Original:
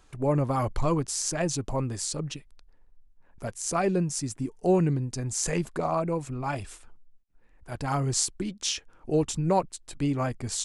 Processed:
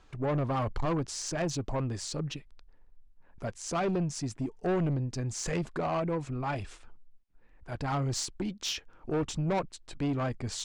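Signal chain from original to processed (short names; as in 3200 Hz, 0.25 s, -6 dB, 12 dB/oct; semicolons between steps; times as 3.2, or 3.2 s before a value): LPF 5000 Hz 12 dB/oct; soft clip -25 dBFS, distortion -10 dB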